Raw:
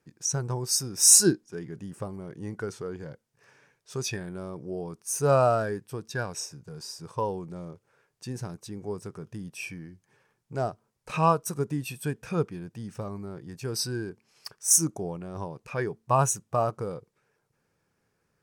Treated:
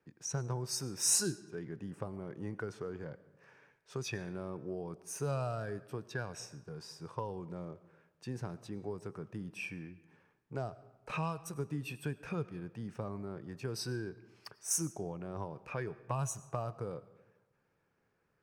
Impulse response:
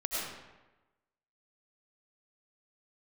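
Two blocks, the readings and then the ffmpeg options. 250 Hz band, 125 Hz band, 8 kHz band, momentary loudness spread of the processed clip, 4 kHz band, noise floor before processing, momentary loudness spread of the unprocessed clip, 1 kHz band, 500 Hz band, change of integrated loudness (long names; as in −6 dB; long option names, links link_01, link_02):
−8.5 dB, −7.0 dB, −12.5 dB, 12 LU, −10.5 dB, −76 dBFS, 19 LU, −13.5 dB, −11.0 dB, −12.5 dB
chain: -filter_complex "[0:a]bass=frequency=250:gain=-3,treble=frequency=4000:gain=-12,acrossover=split=140|3000[link_01][link_02][link_03];[link_02]acompressor=threshold=-35dB:ratio=6[link_04];[link_01][link_04][link_03]amix=inputs=3:normalize=0,asplit=2[link_05][link_06];[1:a]atrim=start_sample=2205[link_07];[link_06][link_07]afir=irnorm=-1:irlink=0,volume=-21dB[link_08];[link_05][link_08]amix=inputs=2:normalize=0,volume=-2.5dB"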